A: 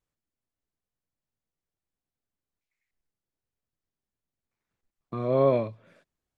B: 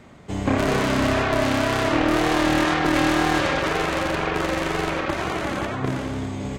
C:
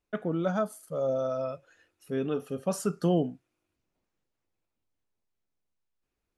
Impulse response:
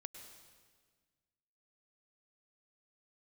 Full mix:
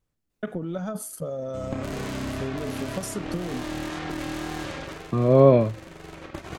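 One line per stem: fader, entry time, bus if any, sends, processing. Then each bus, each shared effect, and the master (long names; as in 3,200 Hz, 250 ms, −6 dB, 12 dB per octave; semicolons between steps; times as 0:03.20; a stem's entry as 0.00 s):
+3.0 dB, 0.00 s, no bus, no send, no processing
−2.0 dB, 1.25 s, bus A, no send, noise gate −23 dBFS, range −14 dB; high-shelf EQ 11,000 Hz +3.5 dB; downward compressor, threshold −27 dBFS, peak gain reduction 10.5 dB; automatic ducking −15 dB, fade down 0.45 s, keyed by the first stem
−5.5 dB, 0.30 s, bus A, no send, speech leveller; transient designer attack +8 dB, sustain +12 dB
bus A: 0.0 dB, high-shelf EQ 3,000 Hz +8 dB; downward compressor 5 to 1, threshold −32 dBFS, peak gain reduction 11.5 dB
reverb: not used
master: low-shelf EQ 420 Hz +8.5 dB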